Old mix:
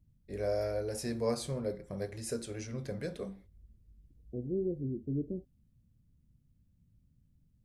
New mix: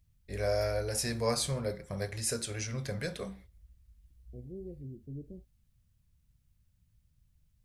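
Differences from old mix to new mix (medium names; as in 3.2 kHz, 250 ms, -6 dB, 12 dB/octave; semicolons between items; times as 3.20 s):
first voice +9.5 dB; master: add peaking EQ 310 Hz -12 dB 2.3 oct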